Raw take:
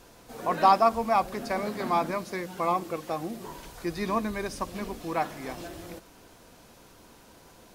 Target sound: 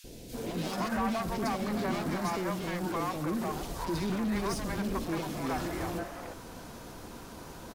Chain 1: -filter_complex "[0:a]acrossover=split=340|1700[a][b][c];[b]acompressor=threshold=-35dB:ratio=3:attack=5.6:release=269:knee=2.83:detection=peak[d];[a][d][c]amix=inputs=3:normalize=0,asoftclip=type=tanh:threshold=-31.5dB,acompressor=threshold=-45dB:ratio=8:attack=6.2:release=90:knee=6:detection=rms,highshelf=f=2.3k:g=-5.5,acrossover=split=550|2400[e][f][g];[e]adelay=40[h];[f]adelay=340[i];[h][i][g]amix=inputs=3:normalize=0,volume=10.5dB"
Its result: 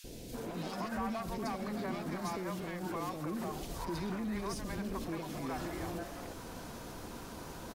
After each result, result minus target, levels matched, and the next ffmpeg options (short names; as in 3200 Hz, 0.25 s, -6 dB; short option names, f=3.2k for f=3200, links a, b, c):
compressor: peak gain reduction +11.5 dB; soft clip: distortion -4 dB
-filter_complex "[0:a]acrossover=split=340|1700[a][b][c];[b]acompressor=threshold=-35dB:ratio=3:attack=5.6:release=269:knee=2.83:detection=peak[d];[a][d][c]amix=inputs=3:normalize=0,asoftclip=type=tanh:threshold=-31.5dB,highshelf=f=2.3k:g=-5.5,acrossover=split=550|2400[e][f][g];[e]adelay=40[h];[f]adelay=340[i];[h][i][g]amix=inputs=3:normalize=0,volume=10.5dB"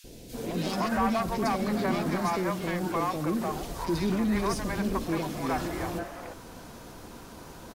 soft clip: distortion -4 dB
-filter_complex "[0:a]acrossover=split=340|1700[a][b][c];[b]acompressor=threshold=-35dB:ratio=3:attack=5.6:release=269:knee=2.83:detection=peak[d];[a][d][c]amix=inputs=3:normalize=0,asoftclip=type=tanh:threshold=-38dB,highshelf=f=2.3k:g=-5.5,acrossover=split=550|2400[e][f][g];[e]adelay=40[h];[f]adelay=340[i];[h][i][g]amix=inputs=3:normalize=0,volume=10.5dB"